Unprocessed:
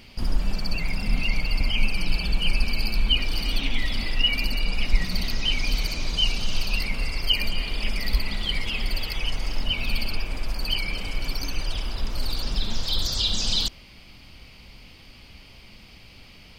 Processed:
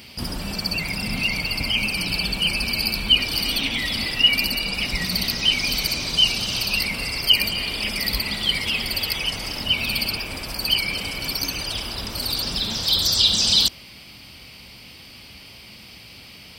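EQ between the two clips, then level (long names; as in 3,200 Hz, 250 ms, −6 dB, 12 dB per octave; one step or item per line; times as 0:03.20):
high-pass filter 84 Hz 12 dB per octave
high-shelf EQ 4,800 Hz +10 dB
notch filter 6,700 Hz, Q 7.1
+4.0 dB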